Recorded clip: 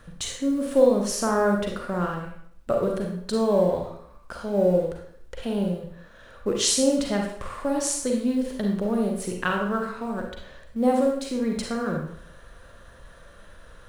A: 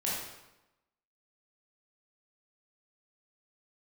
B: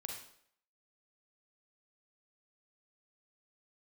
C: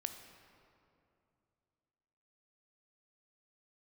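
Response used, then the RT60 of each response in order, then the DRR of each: B; 0.95, 0.65, 2.6 s; -7.0, 0.5, 6.5 dB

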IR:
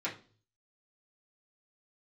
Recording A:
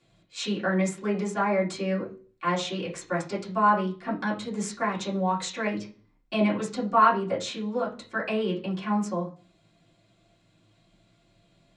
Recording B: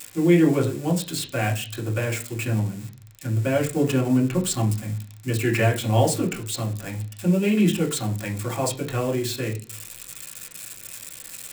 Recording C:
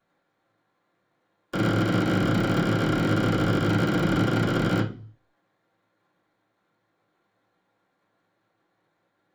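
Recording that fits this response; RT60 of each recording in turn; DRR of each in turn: A; 0.40, 0.40, 0.40 s; -8.0, -2.0, -14.0 dB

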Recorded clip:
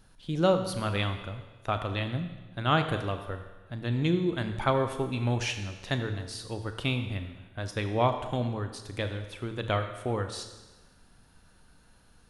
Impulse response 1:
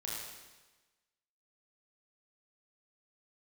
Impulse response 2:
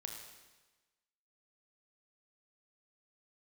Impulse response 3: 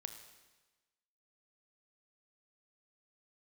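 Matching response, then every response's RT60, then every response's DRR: 3; 1.2, 1.2, 1.2 s; -5.0, 2.0, 7.0 dB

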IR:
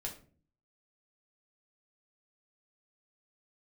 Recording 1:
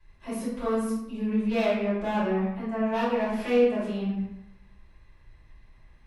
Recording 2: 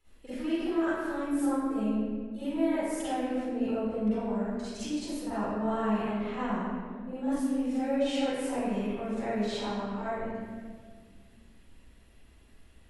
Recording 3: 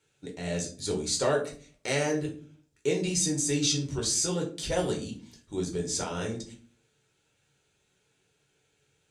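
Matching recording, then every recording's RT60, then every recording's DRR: 3; 0.85, 1.7, 0.45 s; -11.0, -14.0, -1.0 dB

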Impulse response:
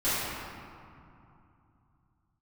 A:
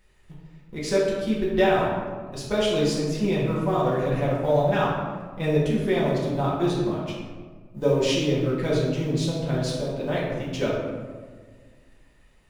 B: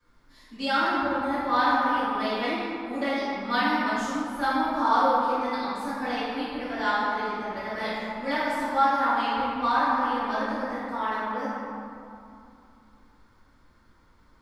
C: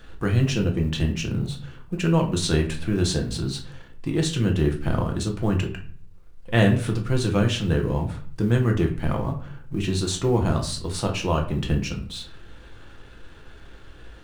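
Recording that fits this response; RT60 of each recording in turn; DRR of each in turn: B; 1.6, 2.7, 0.45 s; -7.0, -16.5, 1.5 dB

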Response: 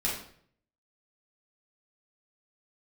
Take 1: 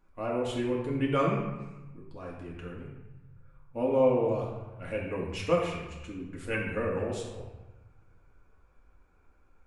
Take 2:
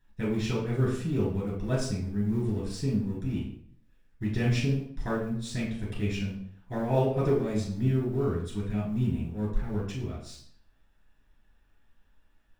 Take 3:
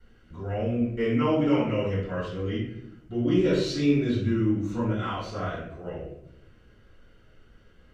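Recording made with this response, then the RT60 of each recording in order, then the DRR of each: 2; 1.1, 0.60, 0.75 s; -4.5, -7.0, -16.0 dB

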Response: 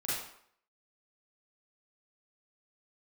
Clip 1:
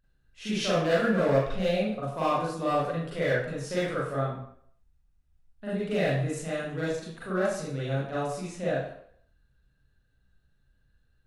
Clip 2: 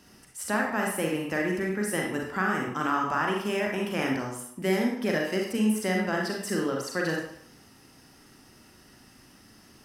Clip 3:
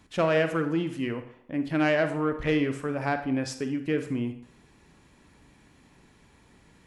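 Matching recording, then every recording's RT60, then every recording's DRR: 1; 0.65, 0.65, 0.65 s; -9.5, -1.0, 8.0 dB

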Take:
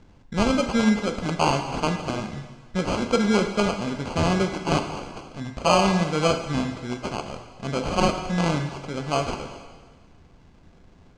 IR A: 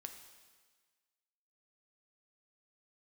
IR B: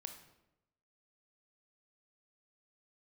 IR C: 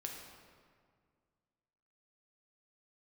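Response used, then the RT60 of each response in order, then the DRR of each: A; 1.5, 0.90, 2.0 s; 5.0, 6.0, 0.0 dB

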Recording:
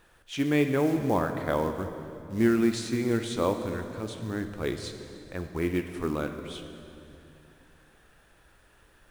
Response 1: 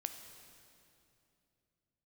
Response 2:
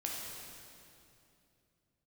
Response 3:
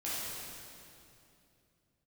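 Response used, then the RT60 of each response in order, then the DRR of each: 1; 2.7, 2.7, 2.7 s; 6.5, -3.0, -10.0 dB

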